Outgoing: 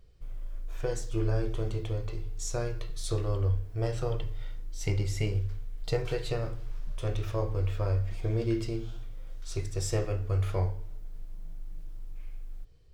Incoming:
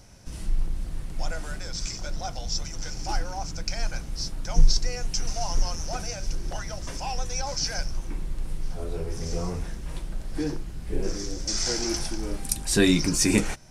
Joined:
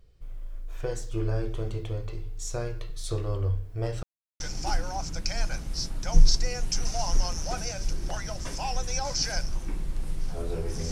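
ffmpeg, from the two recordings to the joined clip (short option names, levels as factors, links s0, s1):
-filter_complex "[0:a]apad=whole_dur=10.91,atrim=end=10.91,asplit=2[s0][s1];[s0]atrim=end=4.03,asetpts=PTS-STARTPTS,afade=t=out:st=4.026:d=0.004:c=hsin[s2];[s1]atrim=start=4.03:end=4.4,asetpts=PTS-STARTPTS,volume=0[s3];[1:a]atrim=start=2.82:end=9.33,asetpts=PTS-STARTPTS,afade=t=in:d=0.004:c=hsin[s4];[s2][s3][s4]concat=n=3:v=0:a=1"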